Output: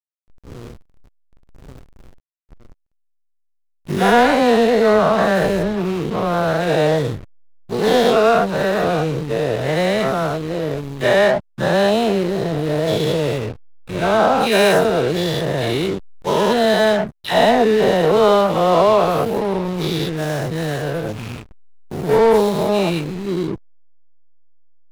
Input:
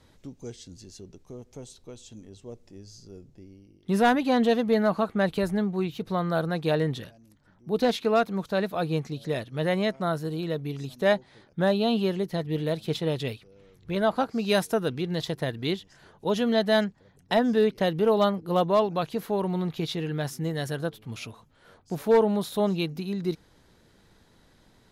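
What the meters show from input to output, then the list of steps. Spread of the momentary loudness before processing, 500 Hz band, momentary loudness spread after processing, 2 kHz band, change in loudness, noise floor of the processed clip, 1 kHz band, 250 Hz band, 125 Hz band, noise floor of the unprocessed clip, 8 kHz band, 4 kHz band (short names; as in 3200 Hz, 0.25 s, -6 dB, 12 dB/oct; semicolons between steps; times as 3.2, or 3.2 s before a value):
20 LU, +10.0 dB, 10 LU, +11.0 dB, +9.5 dB, -65 dBFS, +11.5 dB, +6.5 dB, +7.5 dB, -60 dBFS, +11.0 dB, +9.5 dB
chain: spectral dilation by 0.24 s; bell 240 Hz -3.5 dB 0.94 oct; dispersion lows, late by 0.122 s, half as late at 2800 Hz; backlash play -24 dBFS; gain +5 dB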